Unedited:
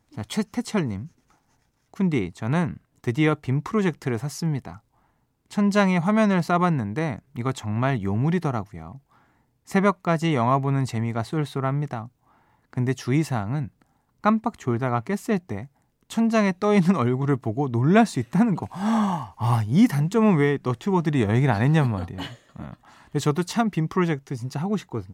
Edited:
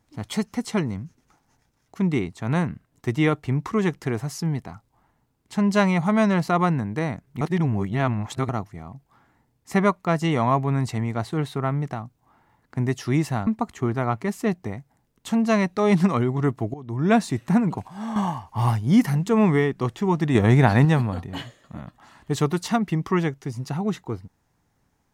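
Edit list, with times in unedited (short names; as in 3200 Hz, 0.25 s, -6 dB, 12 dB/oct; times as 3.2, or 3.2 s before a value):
7.41–8.49 reverse
13.47–14.32 cut
17.59–18.08 fade in, from -19 dB
18.73–19.01 gain -9 dB
21.2–21.7 gain +4 dB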